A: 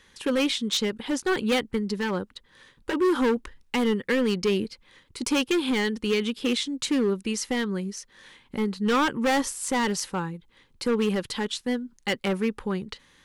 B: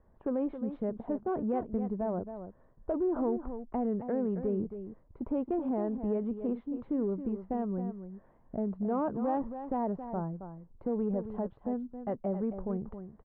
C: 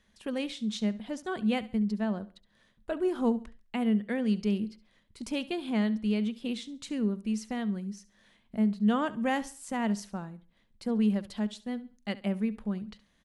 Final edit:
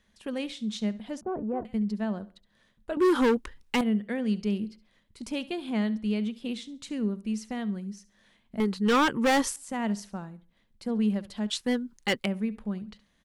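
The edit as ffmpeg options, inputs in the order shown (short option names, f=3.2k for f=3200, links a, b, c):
-filter_complex "[0:a]asplit=3[a][b][c];[2:a]asplit=5[d][e][f][g][h];[d]atrim=end=1.212[i];[1:a]atrim=start=1.208:end=1.652[j];[e]atrim=start=1.648:end=2.972[k];[a]atrim=start=2.968:end=3.812[l];[f]atrim=start=3.808:end=8.602[m];[b]atrim=start=8.598:end=9.562[n];[g]atrim=start=9.558:end=11.502[o];[c]atrim=start=11.498:end=12.262[p];[h]atrim=start=12.258[q];[i][j]acrossfade=d=0.004:c1=hsin:c2=hsin[r];[r][k]acrossfade=d=0.004:c1=hsin:c2=hsin[s];[s][l]acrossfade=d=0.004:c1=hsin:c2=hsin[t];[t][m]acrossfade=d=0.004:c1=hsin:c2=hsin[u];[u][n]acrossfade=d=0.004:c1=hsin:c2=hsin[v];[v][o]acrossfade=d=0.004:c1=hsin:c2=hsin[w];[w][p]acrossfade=d=0.004:c1=hsin:c2=hsin[x];[x][q]acrossfade=d=0.004:c1=hsin:c2=hsin"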